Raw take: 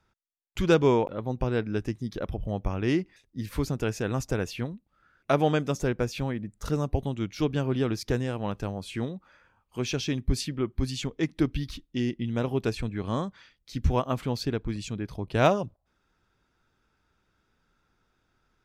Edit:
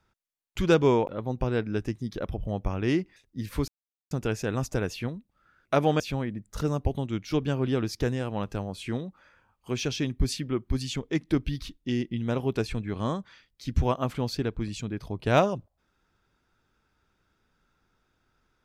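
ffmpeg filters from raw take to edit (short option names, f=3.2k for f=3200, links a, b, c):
-filter_complex "[0:a]asplit=3[a][b][c];[a]atrim=end=3.68,asetpts=PTS-STARTPTS,afade=t=out:st=3.676:d=0.004:c=hsin,apad=pad_dur=0.43[d];[b]atrim=start=3.68:end=5.572,asetpts=PTS-STARTPTS,afade=t=in:d=0.004:c=hsin[e];[c]atrim=start=6.078[f];[d][e]concat=n=2:v=0:a=1[g];[g][f]acrossfade=d=0.004:c1=hsin:c2=hsin"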